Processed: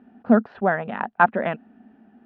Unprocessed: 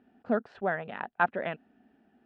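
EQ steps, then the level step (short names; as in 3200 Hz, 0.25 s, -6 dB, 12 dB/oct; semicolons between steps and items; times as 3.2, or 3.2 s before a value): air absorption 200 m; bell 220 Hz +9 dB 0.44 oct; bell 1000 Hz +4.5 dB 1.2 oct; +7.0 dB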